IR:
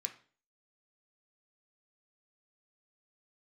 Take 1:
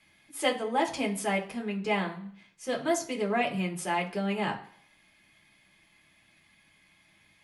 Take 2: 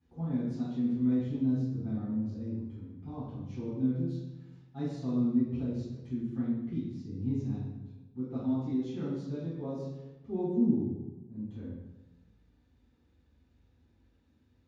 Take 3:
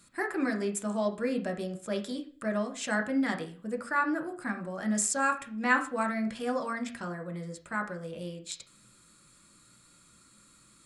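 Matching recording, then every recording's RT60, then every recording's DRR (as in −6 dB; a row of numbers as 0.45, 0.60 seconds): 3; 0.55, 1.1, 0.40 seconds; −1.0, −13.0, 3.5 decibels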